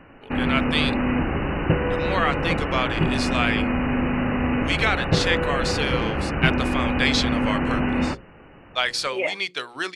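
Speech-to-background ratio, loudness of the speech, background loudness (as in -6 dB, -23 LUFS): -1.5 dB, -25.5 LUFS, -24.0 LUFS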